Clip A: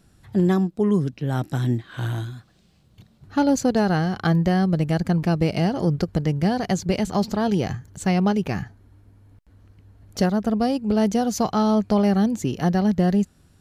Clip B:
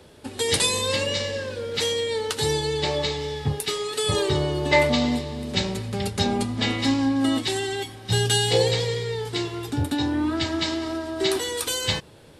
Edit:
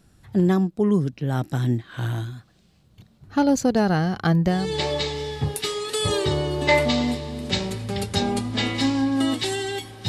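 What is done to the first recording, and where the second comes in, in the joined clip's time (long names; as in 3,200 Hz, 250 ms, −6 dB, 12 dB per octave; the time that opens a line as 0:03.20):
clip A
0:04.61: continue with clip B from 0:02.65, crossfade 0.28 s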